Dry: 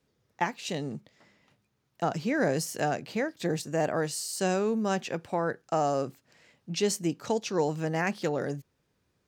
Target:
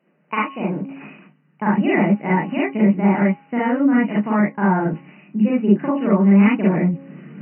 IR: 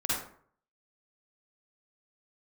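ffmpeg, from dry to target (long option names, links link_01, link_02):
-filter_complex "[1:a]atrim=start_sample=2205,afade=type=out:start_time=0.15:duration=0.01,atrim=end_sample=7056[link_01];[0:a][link_01]afir=irnorm=-1:irlink=0,afftfilt=real='re*between(b*sr/4096,110,2400)':imag='im*between(b*sr/4096,110,2400)':win_size=4096:overlap=0.75,asetrate=55125,aresample=44100,bandreject=frequency=273.2:width_type=h:width=4,bandreject=frequency=546.4:width_type=h:width=4,bandreject=frequency=819.6:width_type=h:width=4,bandreject=frequency=1092.8:width_type=h:width=4,areverse,acompressor=mode=upward:threshold=-34dB:ratio=2.5,areverse,asubboost=boost=7:cutoff=220,asplit=2[link_02][link_03];[link_03]acompressor=threshold=-29dB:ratio=6,volume=-1.5dB[link_04];[link_02][link_04]amix=inputs=2:normalize=0"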